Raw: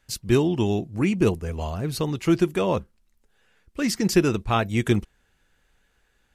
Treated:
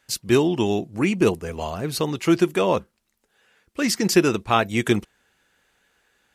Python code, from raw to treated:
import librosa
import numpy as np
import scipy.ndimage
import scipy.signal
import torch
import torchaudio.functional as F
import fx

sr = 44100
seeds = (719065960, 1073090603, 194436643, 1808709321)

y = fx.highpass(x, sr, hz=280.0, slope=6)
y = F.gain(torch.from_numpy(y), 4.5).numpy()